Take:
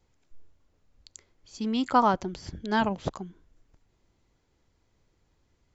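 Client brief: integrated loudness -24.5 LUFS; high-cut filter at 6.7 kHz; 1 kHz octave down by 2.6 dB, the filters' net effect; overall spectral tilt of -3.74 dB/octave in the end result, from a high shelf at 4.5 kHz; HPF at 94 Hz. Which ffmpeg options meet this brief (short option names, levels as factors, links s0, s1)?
-af "highpass=94,lowpass=6700,equalizer=f=1000:t=o:g=-3.5,highshelf=f=4500:g=7,volume=1.68"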